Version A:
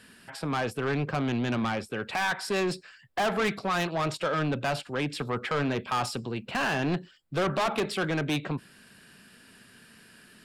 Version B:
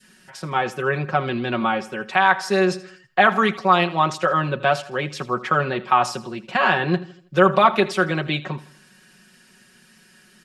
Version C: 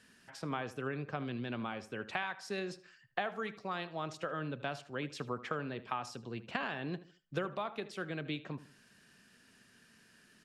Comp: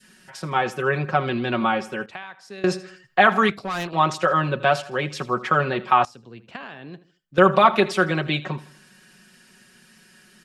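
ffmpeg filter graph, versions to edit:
-filter_complex "[2:a]asplit=2[a][b];[1:a]asplit=4[c][d][e][f];[c]atrim=end=2.062[g];[a]atrim=start=2.058:end=2.642[h];[d]atrim=start=2.638:end=3.502[i];[0:a]atrim=start=3.498:end=3.932[j];[e]atrim=start=3.928:end=6.052[k];[b]atrim=start=6.048:end=7.382[l];[f]atrim=start=7.378[m];[g][h]acrossfade=d=0.004:c1=hsin:c2=hsin[n];[n][i]acrossfade=d=0.004:c1=hsin:c2=hsin[o];[o][j]acrossfade=d=0.004:c1=hsin:c2=hsin[p];[p][k]acrossfade=d=0.004:c1=hsin:c2=hsin[q];[q][l]acrossfade=d=0.004:c1=hsin:c2=hsin[r];[r][m]acrossfade=d=0.004:c1=hsin:c2=hsin"

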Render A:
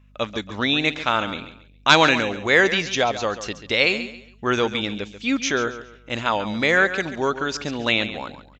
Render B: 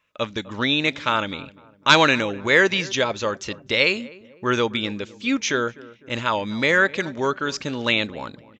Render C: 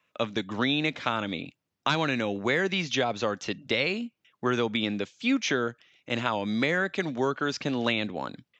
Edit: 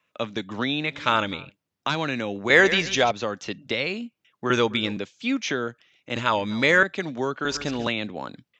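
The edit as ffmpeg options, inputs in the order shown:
-filter_complex "[1:a]asplit=3[a][b][c];[0:a]asplit=2[d][e];[2:a]asplit=6[f][g][h][i][j][k];[f]atrim=end=1.05[l];[a]atrim=start=0.81:end=1.57[m];[g]atrim=start=1.33:end=2.502[n];[d]atrim=start=2.498:end=3.112[o];[h]atrim=start=3.108:end=4.502[p];[b]atrim=start=4.498:end=4.972[q];[i]atrim=start=4.968:end=6.162[r];[c]atrim=start=6.158:end=6.832[s];[j]atrim=start=6.828:end=7.452[t];[e]atrim=start=7.448:end=7.872[u];[k]atrim=start=7.868[v];[l][m]acrossfade=d=0.24:c1=tri:c2=tri[w];[w][n]acrossfade=d=0.24:c1=tri:c2=tri[x];[x][o]acrossfade=d=0.004:c1=hsin:c2=hsin[y];[y][p]acrossfade=d=0.004:c1=hsin:c2=hsin[z];[z][q]acrossfade=d=0.004:c1=hsin:c2=hsin[aa];[aa][r]acrossfade=d=0.004:c1=hsin:c2=hsin[ab];[ab][s]acrossfade=d=0.004:c1=hsin:c2=hsin[ac];[ac][t]acrossfade=d=0.004:c1=hsin:c2=hsin[ad];[ad][u]acrossfade=d=0.004:c1=hsin:c2=hsin[ae];[ae][v]acrossfade=d=0.004:c1=hsin:c2=hsin"

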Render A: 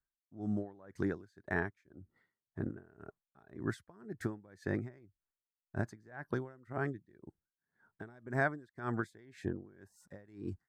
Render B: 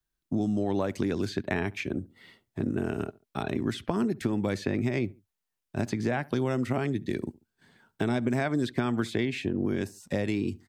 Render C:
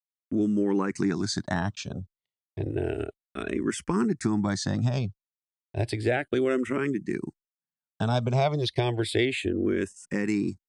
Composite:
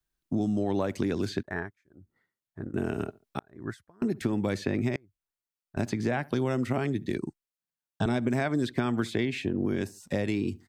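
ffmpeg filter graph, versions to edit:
-filter_complex "[0:a]asplit=3[a][b][c];[1:a]asplit=5[d][e][f][g][h];[d]atrim=end=1.432[i];[a]atrim=start=1.428:end=2.742[j];[e]atrim=start=2.738:end=3.392[k];[b]atrim=start=3.388:end=4.022[l];[f]atrim=start=4.018:end=4.962[m];[c]atrim=start=4.958:end=5.772[n];[g]atrim=start=5.768:end=7.182[o];[2:a]atrim=start=7.178:end=8.062[p];[h]atrim=start=8.058[q];[i][j]acrossfade=d=0.004:c1=hsin:c2=hsin[r];[r][k]acrossfade=d=0.004:c1=hsin:c2=hsin[s];[s][l]acrossfade=d=0.004:c1=hsin:c2=hsin[t];[t][m]acrossfade=d=0.004:c1=hsin:c2=hsin[u];[u][n]acrossfade=d=0.004:c1=hsin:c2=hsin[v];[v][o]acrossfade=d=0.004:c1=hsin:c2=hsin[w];[w][p]acrossfade=d=0.004:c1=hsin:c2=hsin[x];[x][q]acrossfade=d=0.004:c1=hsin:c2=hsin"

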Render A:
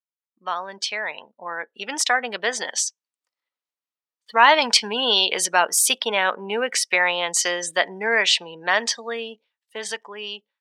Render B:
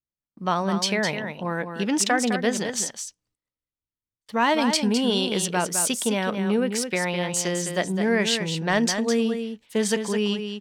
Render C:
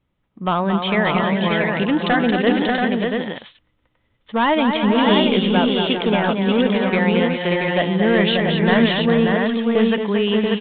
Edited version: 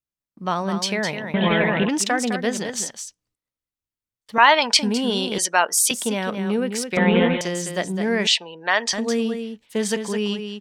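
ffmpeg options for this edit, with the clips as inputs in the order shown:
-filter_complex "[2:a]asplit=2[a][b];[0:a]asplit=3[c][d][e];[1:a]asplit=6[f][g][h][i][j][k];[f]atrim=end=1.342[l];[a]atrim=start=1.338:end=1.892[m];[g]atrim=start=1.888:end=4.382[n];[c]atrim=start=4.378:end=4.792[o];[h]atrim=start=4.788:end=5.382[p];[d]atrim=start=5.378:end=5.912[q];[i]atrim=start=5.908:end=6.972[r];[b]atrim=start=6.968:end=7.412[s];[j]atrim=start=7.408:end=8.272[t];[e]atrim=start=8.268:end=8.932[u];[k]atrim=start=8.928[v];[l][m]acrossfade=d=0.004:c1=hsin:c2=hsin[w];[w][n]acrossfade=d=0.004:c1=hsin:c2=hsin[x];[x][o]acrossfade=d=0.004:c1=hsin:c2=hsin[y];[y][p]acrossfade=d=0.004:c1=hsin:c2=hsin[z];[z][q]acrossfade=d=0.004:c1=hsin:c2=hsin[aa];[aa][r]acrossfade=d=0.004:c1=hsin:c2=hsin[ab];[ab][s]acrossfade=d=0.004:c1=hsin:c2=hsin[ac];[ac][t]acrossfade=d=0.004:c1=hsin:c2=hsin[ad];[ad][u]acrossfade=d=0.004:c1=hsin:c2=hsin[ae];[ae][v]acrossfade=d=0.004:c1=hsin:c2=hsin"

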